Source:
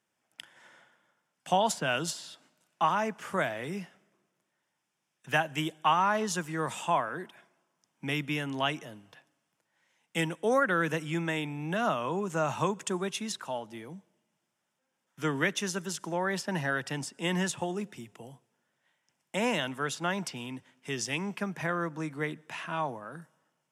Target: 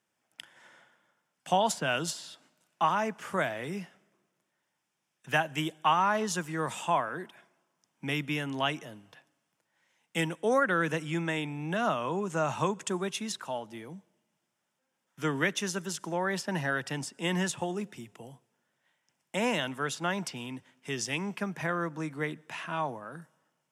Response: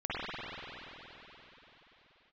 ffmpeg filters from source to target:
-filter_complex "[0:a]asettb=1/sr,asplit=3[a][b][c];[a]atrim=end=10.414[d];[b]atrim=start=10.41:end=12.88,asetpts=PTS-STARTPTS,afade=t=in:d=0.004:c=qsin,afade=t=out:st=2.466:d=0.004:c=qsin,lowpass=f=12k:w=0.5412,lowpass=f=12k:w=1.3066[e];[c]atrim=start=12.876[f];[d][e]acrossfade=d=0.004:c1=hsin:c2=qsin[g];[g][f]acrossfade=d=0.004:c1=qsin:c2=hsin"

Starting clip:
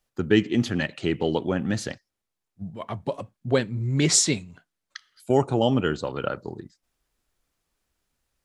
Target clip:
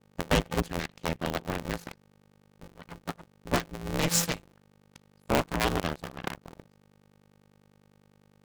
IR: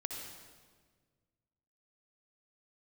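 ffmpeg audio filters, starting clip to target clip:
-af "aeval=exprs='val(0)+0.0112*(sin(2*PI*50*n/s)+sin(2*PI*2*50*n/s)/2+sin(2*PI*3*50*n/s)/3+sin(2*PI*4*50*n/s)/4+sin(2*PI*5*50*n/s)/5)':c=same,aeval=exprs='0.501*(cos(1*acos(clip(val(0)/0.501,-1,1)))-cos(1*PI/2))+0.0398*(cos(6*acos(clip(val(0)/0.501,-1,1)))-cos(6*PI/2))+0.0631*(cos(7*acos(clip(val(0)/0.501,-1,1)))-cos(7*PI/2))+0.1*(cos(8*acos(clip(val(0)/0.501,-1,1)))-cos(8*PI/2))':c=same,aeval=exprs='val(0)*sgn(sin(2*PI*170*n/s))':c=same,volume=-6.5dB"

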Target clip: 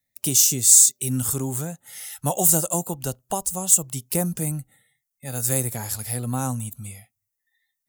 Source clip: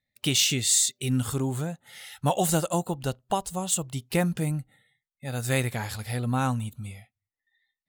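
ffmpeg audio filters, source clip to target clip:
-filter_complex "[0:a]acrossover=split=210|1100|4400[a][b][c][d];[c]acompressor=threshold=-42dB:ratio=6[e];[a][b][e][d]amix=inputs=4:normalize=0,aexciter=amount=3.3:drive=6.9:freq=5.4k"

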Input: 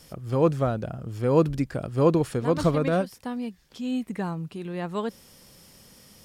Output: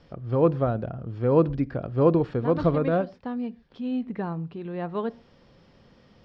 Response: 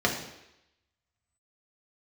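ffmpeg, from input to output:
-filter_complex "[0:a]lowpass=f=4.4k:w=0.5412,lowpass=f=4.4k:w=1.3066,highshelf=f=2.9k:g=-11.5,asplit=2[a][b];[1:a]atrim=start_sample=2205,afade=t=out:st=0.19:d=0.01,atrim=end_sample=8820[c];[b][c]afir=irnorm=-1:irlink=0,volume=-29dB[d];[a][d]amix=inputs=2:normalize=0"

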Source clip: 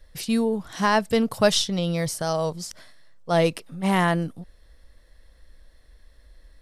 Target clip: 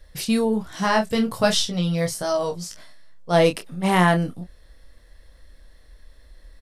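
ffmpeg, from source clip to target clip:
-filter_complex "[0:a]asplit=3[a][b][c];[a]afade=t=out:st=0.62:d=0.02[d];[b]flanger=delay=15.5:depth=3:speed=1.3,afade=t=in:st=0.62:d=0.02,afade=t=out:st=3.32:d=0.02[e];[c]afade=t=in:st=3.32:d=0.02[f];[d][e][f]amix=inputs=3:normalize=0,asplit=2[g][h];[h]adelay=28,volume=-7.5dB[i];[g][i]amix=inputs=2:normalize=0,volume=3dB"

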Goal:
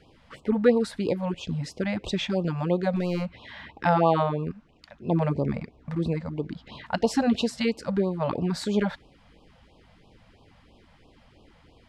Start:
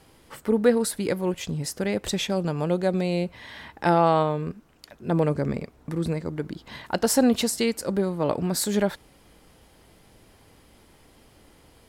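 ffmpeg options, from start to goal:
-filter_complex "[0:a]lowpass=3.8k,asettb=1/sr,asplit=3[a][b][c];[a]atrim=end=2.964[d];[b]atrim=start=2.96:end=3.48,asetpts=PTS-STARTPTS,afade=t=in:d=0.004:c=qsin,afade=t=out:st=0.516:d=0.004:c=qsin,aeval=exprs='clip(val(0),-1,0.0668)':c=same[e];[c]atrim=start=3.476[f];[d][e]acrossfade=d=0.004:c1=hsin:c2=qsin[g];[g][f]acrossfade=d=0.004:c1=qsin:c2=hsin,afftfilt=real='re*(1-between(b*sr/1024,310*pow(1800/310,0.5+0.5*sin(2*PI*3*pts/sr))/1.41,310*pow(1800/310,0.5+0.5*sin(2*PI*3*pts/sr))*1.41))':imag='im*(1-between(b*sr/1024,310*pow(1800/310,0.5+0.5*sin(2*PI*3*pts/sr))/1.41,310*pow(1800/310,0.5+0.5*sin(2*PI*3*pts/sr))*1.41))':win_size=1024:overlap=0.75"

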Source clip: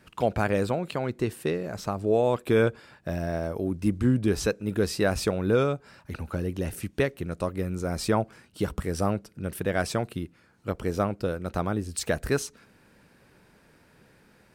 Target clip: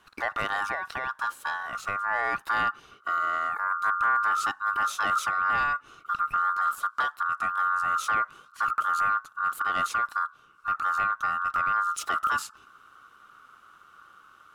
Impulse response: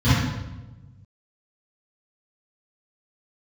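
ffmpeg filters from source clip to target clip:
-af "asubboost=boost=6.5:cutoff=160,asoftclip=type=tanh:threshold=-17.5dB,aeval=exprs='val(0)*sin(2*PI*1300*n/s)':c=same"

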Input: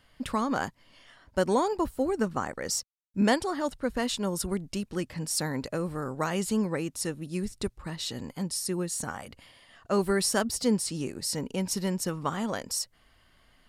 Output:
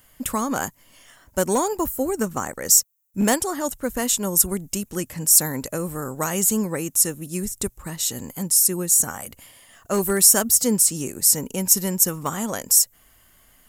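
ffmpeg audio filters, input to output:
-af "equalizer=f=9.4k:w=3:g=-10,aeval=exprs='clip(val(0),-1,0.1)':c=same,aexciter=amount=6.8:drive=8.5:freq=6.6k,volume=3.5dB"

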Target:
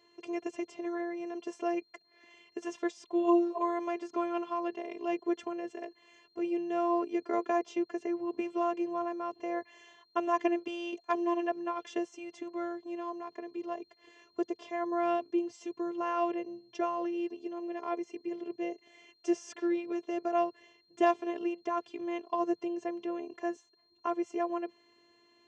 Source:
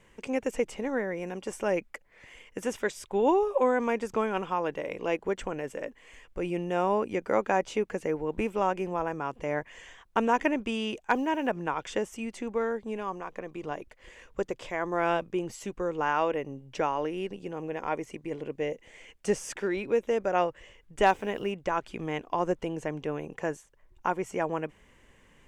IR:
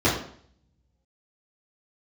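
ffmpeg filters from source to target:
-af "afftfilt=real='hypot(re,im)*cos(PI*b)':imag='0':win_size=512:overlap=0.75,aeval=exprs='val(0)+0.000891*sin(2*PI*4200*n/s)':c=same,highpass=f=130:w=0.5412,highpass=f=130:w=1.3066,equalizer=f=460:t=q:w=4:g=8,equalizer=f=1.5k:t=q:w=4:g=-8,equalizer=f=2.3k:t=q:w=4:g=-7,equalizer=f=4.2k:t=q:w=4:g=-7,lowpass=f=6k:w=0.5412,lowpass=f=6k:w=1.3066"

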